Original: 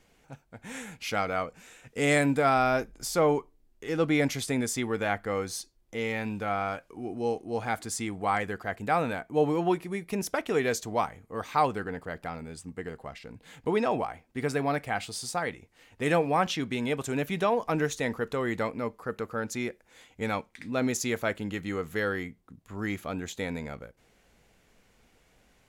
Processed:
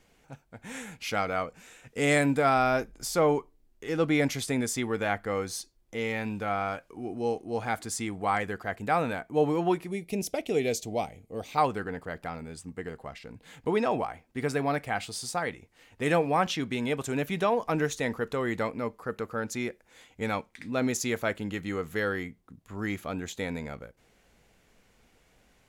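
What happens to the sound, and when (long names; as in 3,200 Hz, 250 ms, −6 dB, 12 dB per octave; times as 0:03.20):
0:09.91–0:11.58: flat-topped bell 1,300 Hz −14 dB 1.2 octaves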